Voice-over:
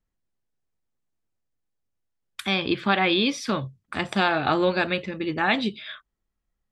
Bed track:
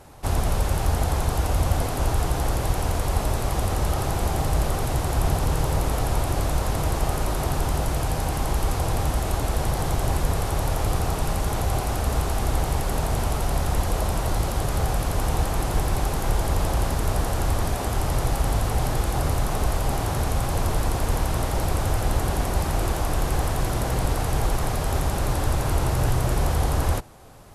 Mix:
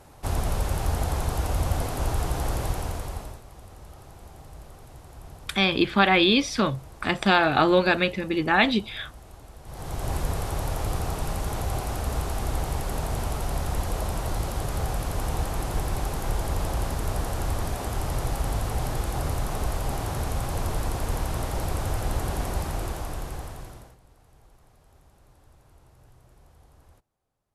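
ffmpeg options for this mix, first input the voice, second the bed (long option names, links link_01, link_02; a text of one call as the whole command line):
ffmpeg -i stem1.wav -i stem2.wav -filter_complex "[0:a]adelay=3100,volume=2.5dB[link_01];[1:a]volume=14dB,afade=type=out:start_time=2.62:duration=0.8:silence=0.11885,afade=type=in:start_time=9.64:duration=0.51:silence=0.133352,afade=type=out:start_time=22.5:duration=1.47:silence=0.0354813[link_02];[link_01][link_02]amix=inputs=2:normalize=0" out.wav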